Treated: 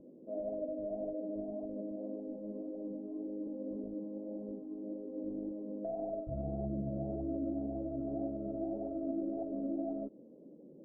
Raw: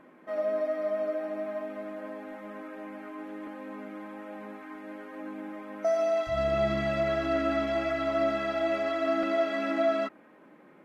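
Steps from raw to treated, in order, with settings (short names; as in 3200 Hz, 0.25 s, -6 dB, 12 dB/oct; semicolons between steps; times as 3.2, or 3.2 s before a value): rattling part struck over -43 dBFS, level -22 dBFS; elliptic low-pass 530 Hz, stop band 80 dB; compressor 2.5:1, threshold -39 dBFS, peak gain reduction 7.5 dB; flange 1.8 Hz, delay 0.7 ms, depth 8.9 ms, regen +69%; gain +7 dB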